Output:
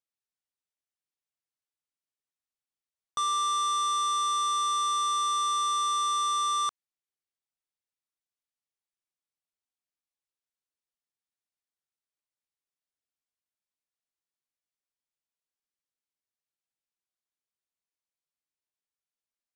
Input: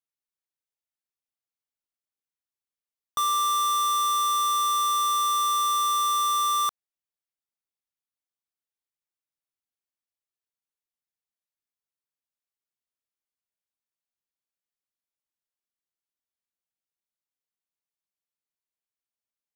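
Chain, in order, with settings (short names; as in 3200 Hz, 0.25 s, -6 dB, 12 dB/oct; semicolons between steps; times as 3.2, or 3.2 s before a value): elliptic low-pass 9800 Hz, stop band 40 dB; gain -2.5 dB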